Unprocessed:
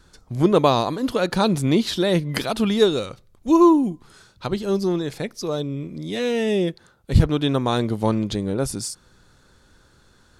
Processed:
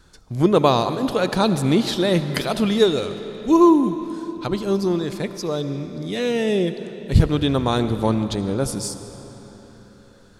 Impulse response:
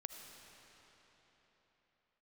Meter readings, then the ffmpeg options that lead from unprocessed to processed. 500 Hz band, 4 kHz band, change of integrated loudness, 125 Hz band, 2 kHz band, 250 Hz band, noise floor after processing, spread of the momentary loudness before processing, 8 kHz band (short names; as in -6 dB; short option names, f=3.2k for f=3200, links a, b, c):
+1.0 dB, +1.0 dB, +0.5 dB, +1.0 dB, +1.0 dB, +1.0 dB, -49 dBFS, 13 LU, +1.0 dB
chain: -filter_complex "[0:a]asplit=2[a][b];[1:a]atrim=start_sample=2205[c];[b][c]afir=irnorm=-1:irlink=0,volume=3dB[d];[a][d]amix=inputs=2:normalize=0,volume=-4.5dB"